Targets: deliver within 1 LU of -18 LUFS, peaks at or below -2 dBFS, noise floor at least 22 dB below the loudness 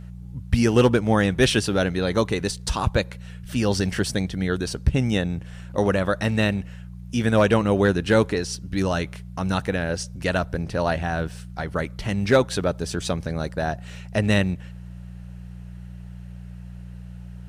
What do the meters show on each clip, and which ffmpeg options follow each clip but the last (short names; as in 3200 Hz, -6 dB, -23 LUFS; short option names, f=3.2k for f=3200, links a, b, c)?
hum 60 Hz; harmonics up to 180 Hz; hum level -35 dBFS; loudness -23.5 LUFS; peak -8.0 dBFS; loudness target -18.0 LUFS
-> -af "bandreject=f=60:t=h:w=4,bandreject=f=120:t=h:w=4,bandreject=f=180:t=h:w=4"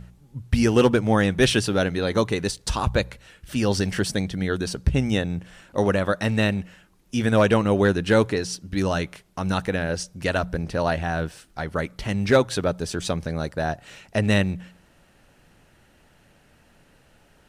hum none; loudness -23.5 LUFS; peak -6.5 dBFS; loudness target -18.0 LUFS
-> -af "volume=5.5dB,alimiter=limit=-2dB:level=0:latency=1"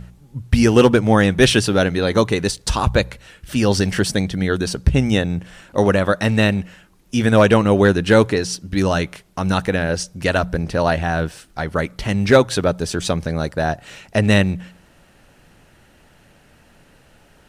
loudness -18.0 LUFS; peak -2.0 dBFS; noise floor -52 dBFS